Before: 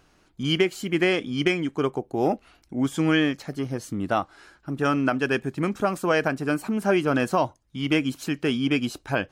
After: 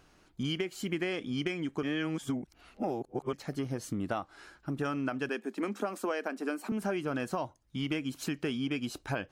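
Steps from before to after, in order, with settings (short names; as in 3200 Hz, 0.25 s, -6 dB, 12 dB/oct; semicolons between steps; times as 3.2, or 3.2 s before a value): 1.83–3.33 reverse; 5.29–6.72 elliptic high-pass 210 Hz, stop band 40 dB; compressor, threshold -28 dBFS, peak gain reduction 12 dB; gain -2 dB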